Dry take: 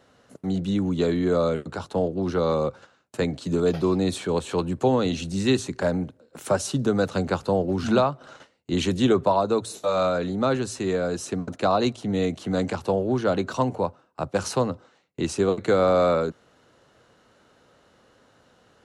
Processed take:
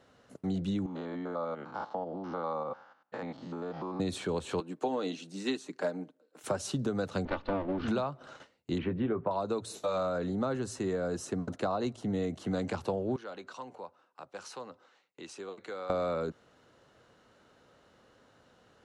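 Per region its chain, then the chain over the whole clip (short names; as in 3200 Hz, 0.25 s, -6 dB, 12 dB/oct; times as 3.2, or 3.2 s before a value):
0.86–4 stepped spectrum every 0.1 s + compressor 3:1, threshold -27 dBFS + speaker cabinet 250–4900 Hz, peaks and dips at 400 Hz -9 dB, 840 Hz +10 dB, 1200 Hz +5 dB, 2600 Hz -6 dB, 3900 Hz -9 dB
4.6–6.44 HPF 220 Hz 24 dB/oct + comb 6.6 ms, depth 37% + upward expander, over -35 dBFS
7.25–7.88 minimum comb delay 3.4 ms + LPF 3700 Hz 24 dB/oct
8.78–9.31 LPF 2200 Hz 24 dB/oct + doubler 18 ms -11 dB
9.97–12.46 notch 2400 Hz + dynamic EQ 3500 Hz, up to -5 dB, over -46 dBFS, Q 1.1
13.16–15.9 weighting filter A + compressor 1.5:1, threshold -56 dBFS + notch 650 Hz, Q 16
whole clip: high shelf 8300 Hz -5.5 dB; compressor, threshold -24 dBFS; gain -4 dB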